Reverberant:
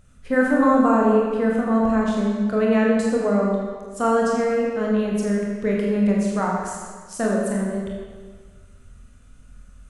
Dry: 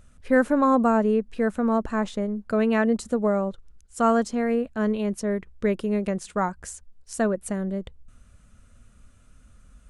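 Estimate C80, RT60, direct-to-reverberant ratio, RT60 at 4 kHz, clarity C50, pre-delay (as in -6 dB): 2.0 dB, 1.6 s, -3.0 dB, 1.4 s, 0.0 dB, 23 ms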